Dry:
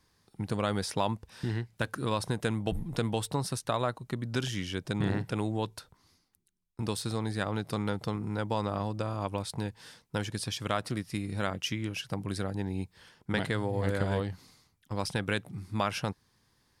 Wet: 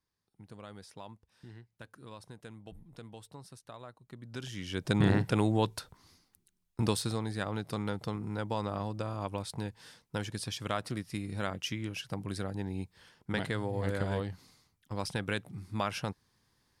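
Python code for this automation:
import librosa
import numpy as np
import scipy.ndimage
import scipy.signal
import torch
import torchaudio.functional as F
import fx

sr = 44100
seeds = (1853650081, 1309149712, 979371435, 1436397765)

y = fx.gain(x, sr, db=fx.line((3.92, -18.0), (4.58, -6.5), (4.91, 4.0), (6.86, 4.0), (7.26, -3.0)))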